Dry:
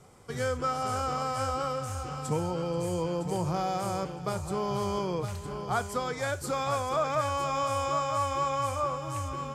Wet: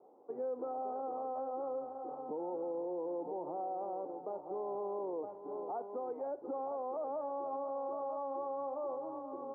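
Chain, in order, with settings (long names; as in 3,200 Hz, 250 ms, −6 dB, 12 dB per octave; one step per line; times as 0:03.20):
Chebyshev band-pass filter 280–870 Hz, order 3
brickwall limiter −30.5 dBFS, peak gain reduction 8.5 dB
level −1.5 dB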